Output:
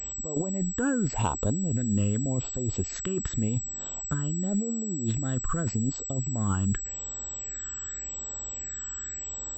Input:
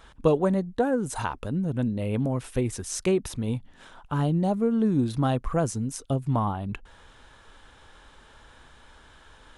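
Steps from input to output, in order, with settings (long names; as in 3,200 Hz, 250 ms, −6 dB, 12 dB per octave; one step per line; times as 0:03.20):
all-pass phaser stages 12, 0.87 Hz, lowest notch 690–2,200 Hz
compressor whose output falls as the input rises −30 dBFS, ratio −1
switching amplifier with a slow clock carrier 7,800 Hz
level +2 dB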